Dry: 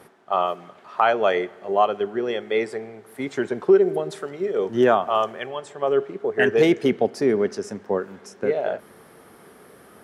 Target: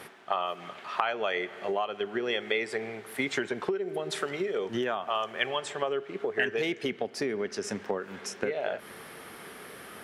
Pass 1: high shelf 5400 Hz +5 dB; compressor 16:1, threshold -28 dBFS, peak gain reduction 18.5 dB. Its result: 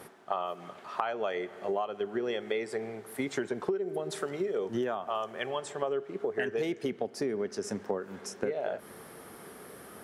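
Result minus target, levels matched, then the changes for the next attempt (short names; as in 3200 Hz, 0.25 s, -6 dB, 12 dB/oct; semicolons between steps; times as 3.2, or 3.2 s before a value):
2000 Hz band -5.5 dB
add after compressor: bell 2600 Hz +10 dB 1.9 oct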